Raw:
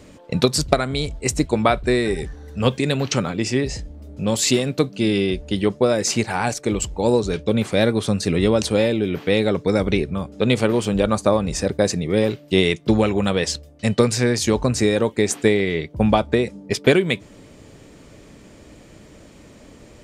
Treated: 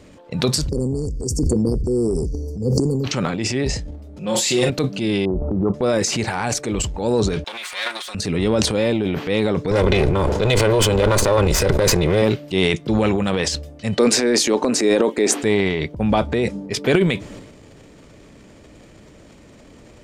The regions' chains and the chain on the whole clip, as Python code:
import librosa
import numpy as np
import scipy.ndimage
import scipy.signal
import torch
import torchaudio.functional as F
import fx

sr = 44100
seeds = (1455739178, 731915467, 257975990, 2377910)

y = fx.chain(x, sr, fx.brickwall_bandstop(low_hz=530.0, high_hz=4400.0),
    fx.sustainer(db_per_s=24.0), at=(0.69, 3.04))
y = fx.chain(y, sr, fx.low_shelf(hz=260.0, db=-6.5),
    fx.comb(ms=5.6, depth=0.59),
    fx.room_flutter(wall_m=5.6, rt60_s=0.25), at=(4.16, 4.7))
y = fx.chain(y, sr, fx.brickwall_lowpass(high_hz=1400.0),
    fx.pre_swell(db_per_s=34.0), at=(5.25, 5.74))
y = fx.chain(y, sr, fx.lower_of_two(delay_ms=5.5),
    fx.highpass(hz=1400.0, slope=12),
    fx.peak_eq(hz=2600.0, db=2.5, octaves=1.6), at=(7.44, 8.15))
y = fx.chain(y, sr, fx.lower_of_two(delay_ms=2.0),
    fx.env_flatten(amount_pct=70), at=(9.71, 12.22))
y = fx.chain(y, sr, fx.highpass(hz=270.0, slope=24),
    fx.low_shelf(hz=400.0, db=9.0), at=(13.98, 15.43))
y = fx.high_shelf(y, sr, hz=8100.0, db=-5.5)
y = fx.transient(y, sr, attack_db=-4, sustain_db=10)
y = y * 10.0 ** (-1.0 / 20.0)